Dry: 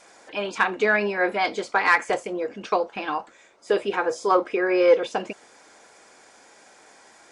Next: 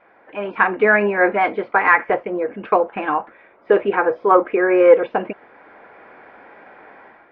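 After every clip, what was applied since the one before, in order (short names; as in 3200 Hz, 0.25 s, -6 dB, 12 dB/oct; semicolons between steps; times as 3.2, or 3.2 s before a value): inverse Chebyshev low-pass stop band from 7000 Hz, stop band 60 dB; AGC gain up to 10 dB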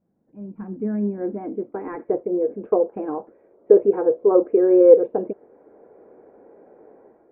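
low-pass sweep 180 Hz -> 440 Hz, 0.39–2.47; high shelf 2300 Hz +8.5 dB; gain -5 dB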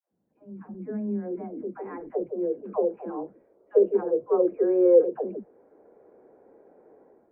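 dispersion lows, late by 0.133 s, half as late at 390 Hz; gain -6 dB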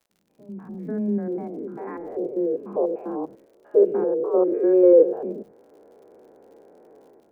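stepped spectrum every 0.1 s; crackle 68/s -56 dBFS; gain +5.5 dB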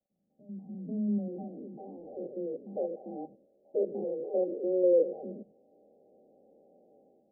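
rippled Chebyshev low-pass 810 Hz, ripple 9 dB; gain -5 dB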